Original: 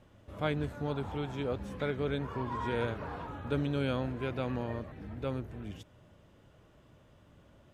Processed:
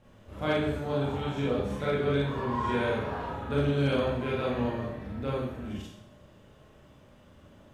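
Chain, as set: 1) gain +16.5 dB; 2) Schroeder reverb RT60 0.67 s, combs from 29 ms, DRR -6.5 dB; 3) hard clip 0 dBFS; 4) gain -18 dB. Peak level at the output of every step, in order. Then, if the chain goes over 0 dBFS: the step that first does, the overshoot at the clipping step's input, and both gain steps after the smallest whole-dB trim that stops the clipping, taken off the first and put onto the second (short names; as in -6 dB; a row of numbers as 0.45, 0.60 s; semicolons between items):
-1.0, +4.0, 0.0, -18.0 dBFS; step 2, 4.0 dB; step 1 +12.5 dB, step 4 -14 dB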